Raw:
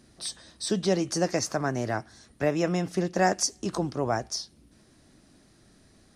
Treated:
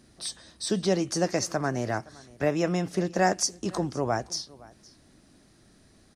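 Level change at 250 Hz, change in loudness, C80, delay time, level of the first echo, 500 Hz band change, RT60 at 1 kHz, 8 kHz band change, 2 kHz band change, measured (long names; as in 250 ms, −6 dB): 0.0 dB, 0.0 dB, no reverb audible, 516 ms, −22.5 dB, 0.0 dB, no reverb audible, 0.0 dB, 0.0 dB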